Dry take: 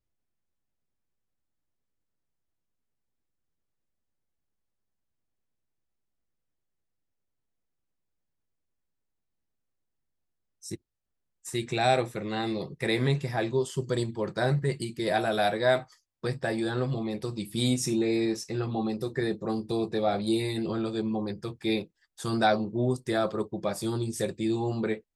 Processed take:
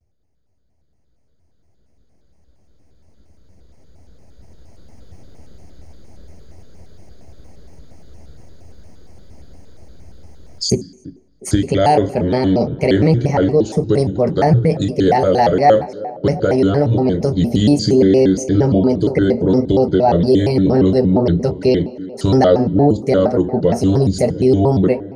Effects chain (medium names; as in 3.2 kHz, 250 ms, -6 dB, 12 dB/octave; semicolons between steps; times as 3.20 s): recorder AGC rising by 5.9 dB/s; peaking EQ 69 Hz +14 dB 0.74 oct; reverberation RT60 0.50 s, pre-delay 3 ms, DRR 13.5 dB; in parallel at 0 dB: peak limiter -12.5 dBFS, peak gain reduction 10 dB; on the sum: tilt EQ -1.5 dB/octave; band-stop 780 Hz, Q 16; on a send: band-passed feedback delay 349 ms, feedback 67%, band-pass 430 Hz, level -16 dB; on the sum: vibrato with a chosen wave square 4.3 Hz, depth 250 cents; trim -2 dB